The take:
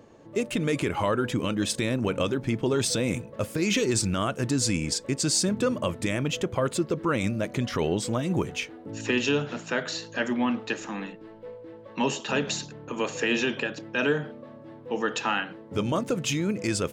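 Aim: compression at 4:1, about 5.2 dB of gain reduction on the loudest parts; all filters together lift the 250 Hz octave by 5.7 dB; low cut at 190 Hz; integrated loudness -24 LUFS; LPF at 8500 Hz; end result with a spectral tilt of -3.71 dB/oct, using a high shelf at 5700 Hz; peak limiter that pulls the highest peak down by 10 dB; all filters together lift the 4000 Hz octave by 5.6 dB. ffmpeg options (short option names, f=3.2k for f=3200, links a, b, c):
-af "highpass=190,lowpass=8.5k,equalizer=f=250:t=o:g=8.5,equalizer=f=4k:t=o:g=4.5,highshelf=f=5.7k:g=7.5,acompressor=threshold=-22dB:ratio=4,volume=6.5dB,alimiter=limit=-14.5dB:level=0:latency=1"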